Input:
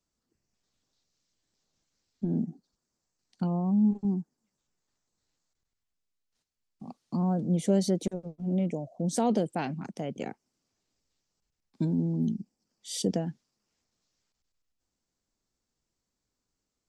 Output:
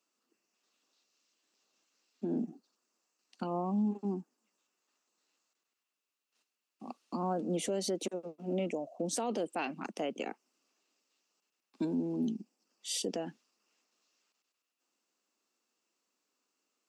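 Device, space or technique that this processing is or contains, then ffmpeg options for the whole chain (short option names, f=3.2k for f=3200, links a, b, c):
laptop speaker: -af "highpass=f=260:w=0.5412,highpass=f=260:w=1.3066,equalizer=f=1.2k:t=o:w=0.46:g=5.5,equalizer=f=2.7k:t=o:w=0.21:g=10.5,alimiter=level_in=3dB:limit=-24dB:level=0:latency=1:release=140,volume=-3dB,volume=2dB"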